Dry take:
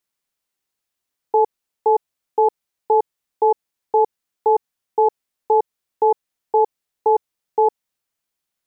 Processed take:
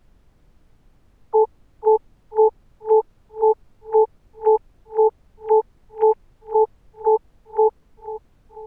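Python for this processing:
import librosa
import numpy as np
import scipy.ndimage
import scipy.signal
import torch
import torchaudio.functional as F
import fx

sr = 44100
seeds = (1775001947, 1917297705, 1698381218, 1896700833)

p1 = fx.sine_speech(x, sr)
p2 = fx.dmg_noise_colour(p1, sr, seeds[0], colour='brown', level_db=-53.0)
y = p2 + fx.echo_feedback(p2, sr, ms=489, feedback_pct=45, wet_db=-15.0, dry=0)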